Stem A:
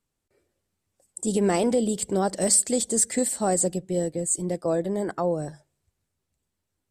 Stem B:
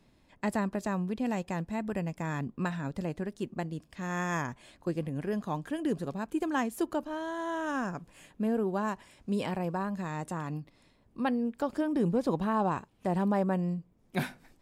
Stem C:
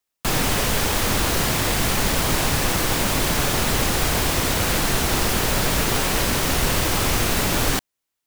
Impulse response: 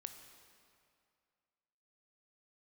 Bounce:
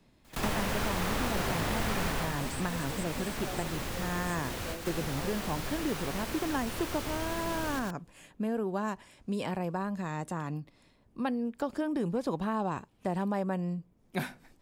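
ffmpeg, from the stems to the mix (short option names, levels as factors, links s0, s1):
-filter_complex "[0:a]volume=0.112[s0];[1:a]volume=1.06,asplit=2[s1][s2];[2:a]volume=0.531,afade=t=out:st=2.07:d=0.26:silence=0.298538,asplit=2[s3][s4];[s4]volume=0.531[s5];[s2]apad=whole_len=364556[s6];[s3][s6]sidechaingate=range=0.0224:threshold=0.002:ratio=16:detection=peak[s7];[s5]aecho=0:1:115:1[s8];[s0][s1][s7][s8]amix=inputs=4:normalize=0,acrossover=split=600|2100|4400[s9][s10][s11][s12];[s9]acompressor=threshold=0.0316:ratio=4[s13];[s10]acompressor=threshold=0.02:ratio=4[s14];[s11]acompressor=threshold=0.00562:ratio=4[s15];[s12]acompressor=threshold=0.00631:ratio=4[s16];[s13][s14][s15][s16]amix=inputs=4:normalize=0"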